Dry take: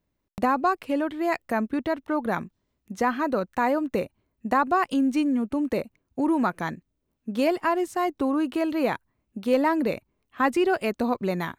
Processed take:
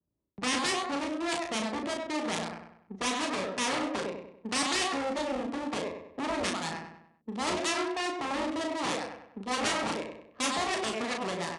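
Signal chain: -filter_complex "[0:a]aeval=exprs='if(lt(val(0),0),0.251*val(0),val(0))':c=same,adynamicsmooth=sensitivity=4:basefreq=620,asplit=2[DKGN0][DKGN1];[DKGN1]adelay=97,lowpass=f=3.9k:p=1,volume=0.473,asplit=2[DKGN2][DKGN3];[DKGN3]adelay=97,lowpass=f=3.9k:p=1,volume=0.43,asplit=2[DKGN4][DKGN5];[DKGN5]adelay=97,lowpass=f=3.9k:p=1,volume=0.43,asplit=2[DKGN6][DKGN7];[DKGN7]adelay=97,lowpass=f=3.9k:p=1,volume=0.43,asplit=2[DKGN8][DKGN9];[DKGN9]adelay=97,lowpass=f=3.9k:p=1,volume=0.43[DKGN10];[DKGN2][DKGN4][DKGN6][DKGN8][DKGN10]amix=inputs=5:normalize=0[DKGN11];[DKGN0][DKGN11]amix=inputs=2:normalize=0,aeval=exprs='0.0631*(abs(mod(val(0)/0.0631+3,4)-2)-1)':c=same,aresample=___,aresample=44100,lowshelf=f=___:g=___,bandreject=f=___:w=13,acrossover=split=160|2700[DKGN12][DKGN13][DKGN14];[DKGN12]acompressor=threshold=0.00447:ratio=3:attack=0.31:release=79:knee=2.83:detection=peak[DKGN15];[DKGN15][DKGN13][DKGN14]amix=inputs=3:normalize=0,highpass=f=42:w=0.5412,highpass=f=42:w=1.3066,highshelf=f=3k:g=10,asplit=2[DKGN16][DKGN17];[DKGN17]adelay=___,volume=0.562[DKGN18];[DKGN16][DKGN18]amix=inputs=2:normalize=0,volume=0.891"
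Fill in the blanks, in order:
22050, 80, -6, 1.5k, 36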